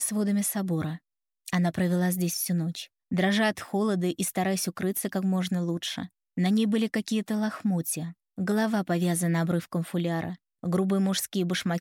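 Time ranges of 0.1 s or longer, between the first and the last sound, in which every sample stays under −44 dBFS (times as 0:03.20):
0:00.97–0:01.46
0:02.85–0:03.11
0:06.07–0:06.37
0:08.12–0:08.38
0:10.35–0:10.63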